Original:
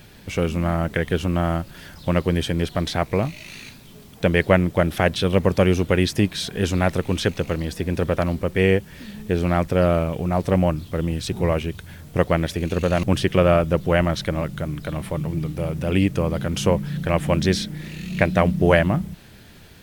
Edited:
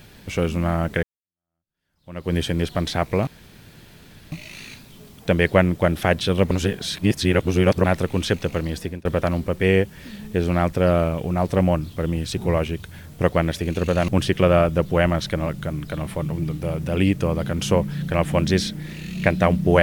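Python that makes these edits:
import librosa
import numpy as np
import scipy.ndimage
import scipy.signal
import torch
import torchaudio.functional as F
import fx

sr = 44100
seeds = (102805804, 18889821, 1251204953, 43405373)

y = fx.edit(x, sr, fx.fade_in_span(start_s=1.03, length_s=1.31, curve='exp'),
    fx.insert_room_tone(at_s=3.27, length_s=1.05),
    fx.reverse_span(start_s=5.46, length_s=1.33),
    fx.fade_out_span(start_s=7.75, length_s=0.25), tone=tone)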